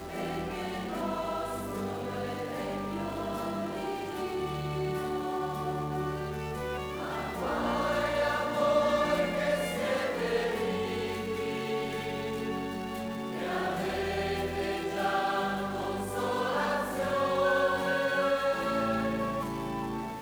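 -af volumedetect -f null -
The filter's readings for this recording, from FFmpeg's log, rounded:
mean_volume: -31.2 dB
max_volume: -15.0 dB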